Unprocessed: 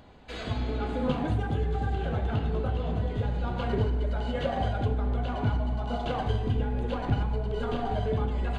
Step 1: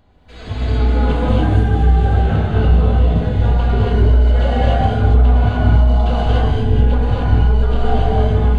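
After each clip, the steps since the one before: bass shelf 73 Hz +11.5 dB; level rider gain up to 12 dB; gated-style reverb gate 310 ms rising, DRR -5.5 dB; trim -6 dB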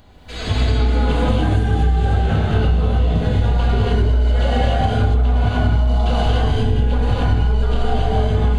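treble shelf 3.3 kHz +9.5 dB; compression 6:1, threshold -19 dBFS, peak gain reduction 11.5 dB; trim +6 dB

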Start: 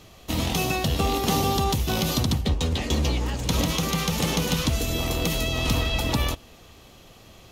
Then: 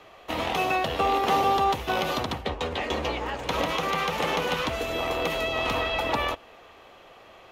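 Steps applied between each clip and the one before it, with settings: three-band isolator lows -19 dB, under 410 Hz, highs -19 dB, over 2.7 kHz; trim +5.5 dB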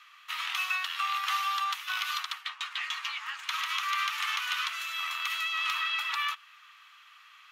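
elliptic high-pass 1.2 kHz, stop band 60 dB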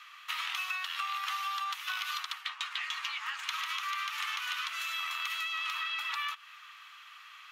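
compression, threshold -36 dBFS, peak gain reduction 10 dB; trim +3.5 dB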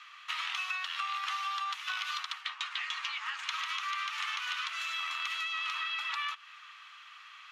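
low-pass 7.4 kHz 12 dB/octave

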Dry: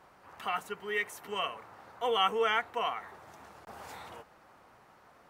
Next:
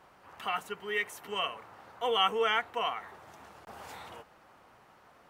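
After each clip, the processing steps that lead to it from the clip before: peaking EQ 3 kHz +3 dB 0.48 oct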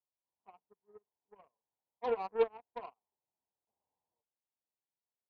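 elliptic low-pass 1 kHz, stop band 40 dB; Chebyshev shaper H 7 -21 dB, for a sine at -20 dBFS; upward expansion 2.5:1, over -51 dBFS; trim +2.5 dB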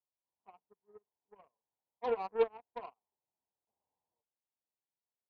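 no audible change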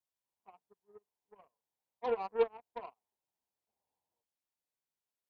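vibrato 0.97 Hz 19 cents

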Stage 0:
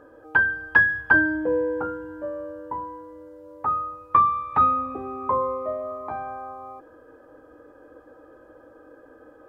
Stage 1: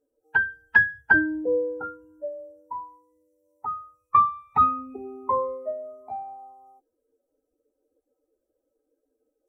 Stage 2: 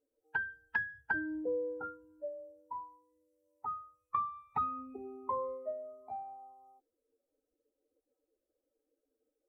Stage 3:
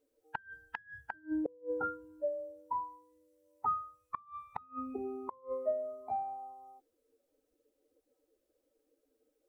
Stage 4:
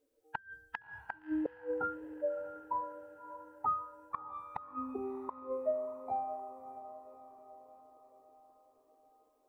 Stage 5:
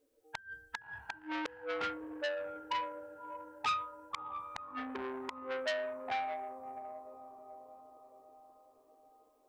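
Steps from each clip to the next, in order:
expander on every frequency bin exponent 2; trim +1 dB
compression 5:1, threshold -23 dBFS, peak gain reduction 10.5 dB; trim -8 dB
inverted gate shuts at -29 dBFS, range -31 dB; trim +6.5 dB
echo that smears into a reverb 634 ms, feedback 54%, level -13 dB
transformer saturation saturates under 3.5 kHz; trim +3 dB

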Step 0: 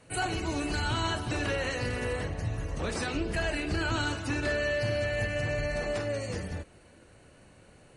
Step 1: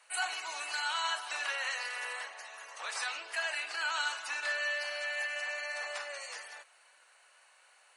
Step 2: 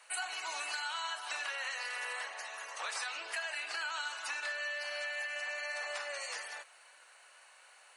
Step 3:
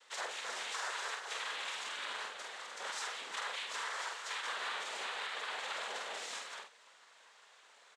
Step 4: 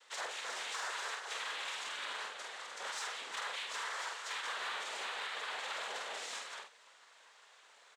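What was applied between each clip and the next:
high-pass 850 Hz 24 dB/octave
compression, threshold -39 dBFS, peak gain reduction 10 dB; trim +3.5 dB
noise-vocoded speech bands 6; doubling 47 ms -5 dB; trim -2.5 dB
in parallel at -5.5 dB: hard clipper -37 dBFS, distortion -14 dB; on the sum: bass shelf 120 Hz -10 dB; trim -3.5 dB

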